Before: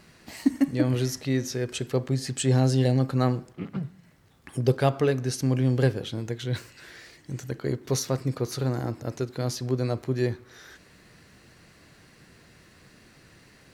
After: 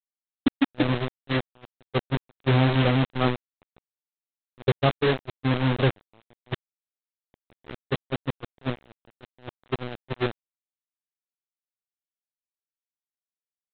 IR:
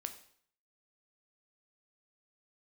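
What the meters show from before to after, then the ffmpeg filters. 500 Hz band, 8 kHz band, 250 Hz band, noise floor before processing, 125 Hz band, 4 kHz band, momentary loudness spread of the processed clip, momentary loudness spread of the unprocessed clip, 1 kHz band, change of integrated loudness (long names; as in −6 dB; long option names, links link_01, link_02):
−1.0 dB, below −40 dB, −1.0 dB, −56 dBFS, −2.0 dB, +2.5 dB, 15 LU, 13 LU, +4.0 dB, +0.5 dB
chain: -af "aresample=8000,acrusher=bits=3:mix=0:aa=0.000001,aresample=44100,agate=range=-27dB:threshold=-22dB:ratio=16:detection=peak"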